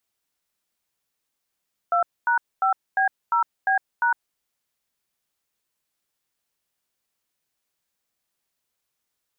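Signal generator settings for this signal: DTMF "2#5B0B#", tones 0.108 s, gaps 0.242 s, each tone -20 dBFS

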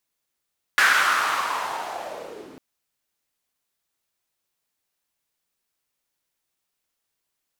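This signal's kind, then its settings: swept filtered noise white, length 1.80 s bandpass, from 1600 Hz, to 270 Hz, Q 3.5, linear, gain ramp -19.5 dB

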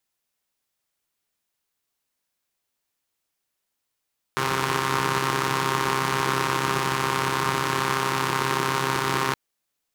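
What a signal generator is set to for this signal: four-cylinder engine model, steady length 4.97 s, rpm 4000, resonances 170/350/1000 Hz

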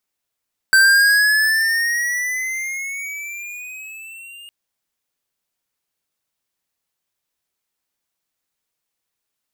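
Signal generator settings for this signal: gliding synth tone square, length 3.76 s, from 1550 Hz, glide +10.5 st, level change -28.5 dB, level -10.5 dB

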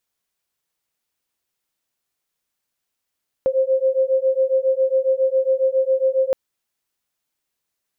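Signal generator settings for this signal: beating tones 524 Hz, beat 7.3 Hz, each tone -18.5 dBFS 2.87 s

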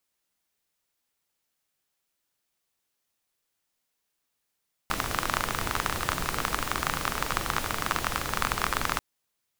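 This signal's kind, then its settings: rain from filtered ticks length 4.09 s, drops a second 27, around 1200 Hz, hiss -1 dB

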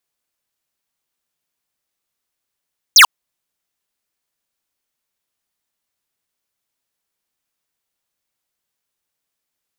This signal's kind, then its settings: laser zap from 7000 Hz, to 860 Hz, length 0.09 s square, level -5.5 dB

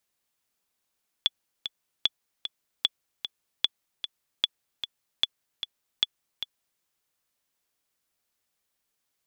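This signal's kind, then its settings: metronome 151 bpm, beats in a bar 2, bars 7, 3430 Hz, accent 10 dB -8 dBFS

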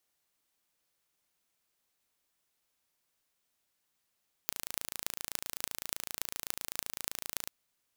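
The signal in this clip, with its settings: pulse train 27.8/s, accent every 8, -4 dBFS 3.00 s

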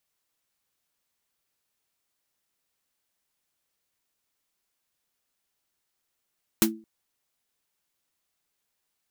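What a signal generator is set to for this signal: snare drum length 0.22 s, tones 220 Hz, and 330 Hz, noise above 540 Hz, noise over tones 2.5 dB, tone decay 0.35 s, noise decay 0.11 s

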